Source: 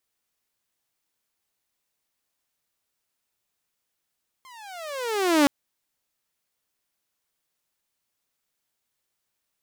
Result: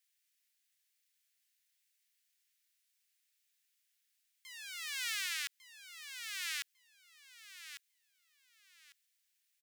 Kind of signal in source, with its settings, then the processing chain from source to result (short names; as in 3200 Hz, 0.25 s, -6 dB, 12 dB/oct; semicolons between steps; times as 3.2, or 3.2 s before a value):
gliding synth tone saw, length 1.02 s, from 1070 Hz, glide -23.5 st, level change +31.5 dB, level -11.5 dB
steep high-pass 1700 Hz 36 dB/oct; on a send: feedback echo 1.15 s, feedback 23%, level -8 dB; on the sum: limiter -24.5 dBFS